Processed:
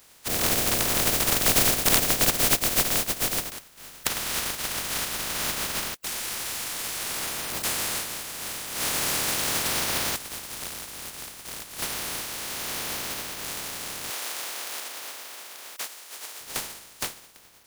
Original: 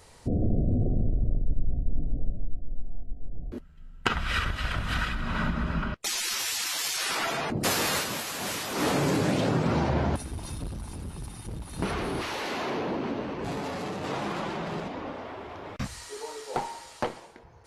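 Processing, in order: spectral contrast reduction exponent 0.11; 14.10–16.41 s: high-pass 440 Hz 12 dB/octave; trim -1 dB

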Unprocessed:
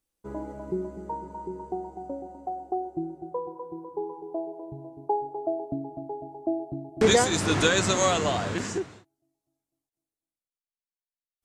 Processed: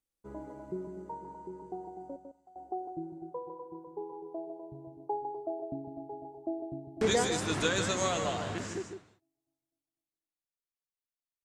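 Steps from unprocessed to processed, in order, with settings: 2.16–2.56 s: amplifier tone stack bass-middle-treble 5-5-5; delay 153 ms -7 dB; trim -8 dB

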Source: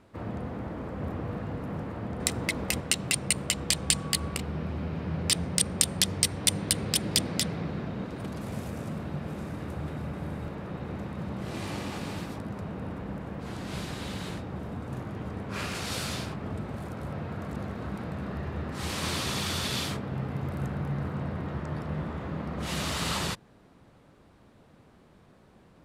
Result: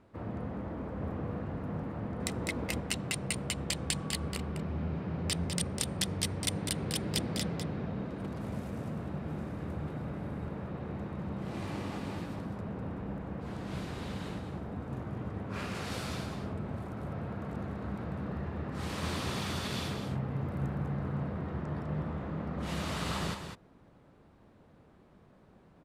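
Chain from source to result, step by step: treble shelf 2.6 kHz -8 dB; delay 201 ms -7.5 dB; trim -3 dB

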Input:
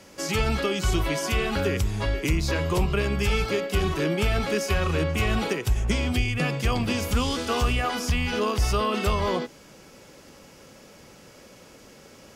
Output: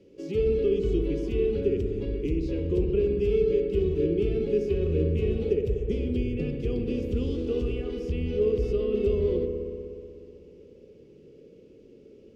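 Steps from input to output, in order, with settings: FFT filter 210 Hz 0 dB, 300 Hz +4 dB, 440 Hz +11 dB, 690 Hz -18 dB, 990 Hz -23 dB, 1.7 kHz -21 dB, 2.7 kHz -9 dB, 10 kHz -26 dB; on a send: feedback echo behind a low-pass 61 ms, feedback 85%, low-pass 2 kHz, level -9 dB; on the sum: trim -6 dB

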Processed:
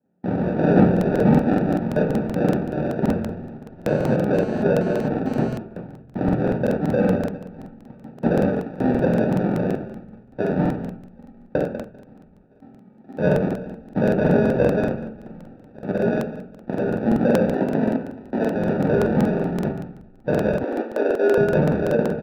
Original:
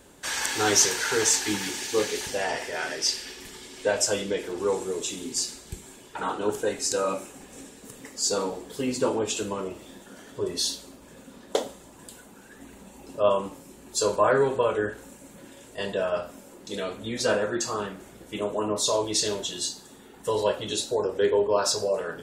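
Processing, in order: rattle on loud lows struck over -42 dBFS, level -16 dBFS; feedback delay 195 ms, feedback 39%, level -15 dB; sample-and-hold 42×; expander -38 dBFS; 15.26–15.89 s: compressor with a negative ratio -37 dBFS, ratio -1; one-sided clip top -21.5 dBFS, bottom -11.5 dBFS; low-pass 2.7 kHz 24 dB/octave; reverberation RT60 0.45 s, pre-delay 3 ms, DRR 3 dB; 3.88–5.54 s: mobile phone buzz -35 dBFS; 17.49–18.56 s: frequency shift +41 Hz; 20.63–21.38 s: steep high-pass 260 Hz 48 dB/octave; crackling interface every 0.19 s, samples 2048, repeat, from 0.92 s; trim -6.5 dB

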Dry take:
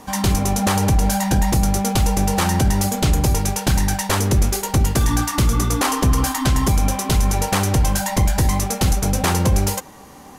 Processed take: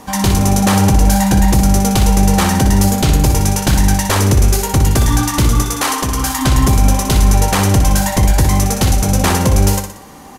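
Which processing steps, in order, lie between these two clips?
5.62–6.39 s: bass shelf 490 Hz -9 dB; on a send: feedback delay 61 ms, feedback 47%, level -7.5 dB; on the sum: trim +4 dB

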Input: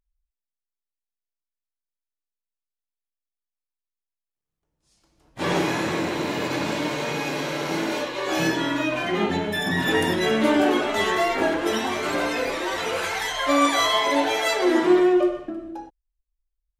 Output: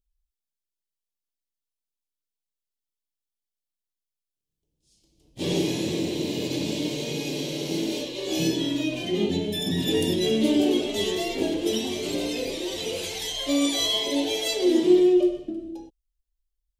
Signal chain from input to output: FFT filter 420 Hz 0 dB, 1.4 kHz -25 dB, 3.1 kHz +1 dB

